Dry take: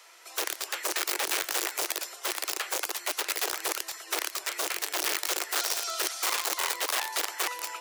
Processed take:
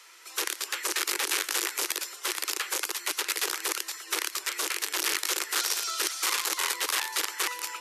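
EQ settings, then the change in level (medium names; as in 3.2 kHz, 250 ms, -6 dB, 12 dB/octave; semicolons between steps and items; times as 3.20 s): brick-wall FIR low-pass 14 kHz; peaking EQ 670 Hz -12.5 dB 0.57 oct; +2.0 dB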